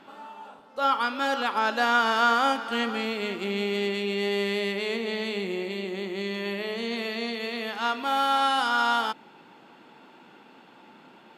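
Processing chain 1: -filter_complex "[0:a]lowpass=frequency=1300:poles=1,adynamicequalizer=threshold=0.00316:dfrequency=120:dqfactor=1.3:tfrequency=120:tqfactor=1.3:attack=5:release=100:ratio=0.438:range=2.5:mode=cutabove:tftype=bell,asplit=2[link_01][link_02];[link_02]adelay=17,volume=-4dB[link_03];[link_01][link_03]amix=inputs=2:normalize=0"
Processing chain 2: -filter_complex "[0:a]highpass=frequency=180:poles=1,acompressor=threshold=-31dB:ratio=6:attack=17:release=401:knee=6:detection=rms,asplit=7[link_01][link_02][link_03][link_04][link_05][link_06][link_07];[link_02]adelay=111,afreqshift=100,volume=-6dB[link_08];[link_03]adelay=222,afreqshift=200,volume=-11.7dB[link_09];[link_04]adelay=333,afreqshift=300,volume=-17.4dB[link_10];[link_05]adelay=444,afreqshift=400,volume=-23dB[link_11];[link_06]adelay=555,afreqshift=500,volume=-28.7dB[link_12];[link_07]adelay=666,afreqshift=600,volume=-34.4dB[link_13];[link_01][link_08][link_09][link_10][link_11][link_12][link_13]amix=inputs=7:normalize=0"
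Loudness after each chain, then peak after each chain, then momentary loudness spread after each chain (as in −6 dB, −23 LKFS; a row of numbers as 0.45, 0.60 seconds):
−27.0, −33.5 LKFS; −10.5, −20.5 dBFS; 10, 19 LU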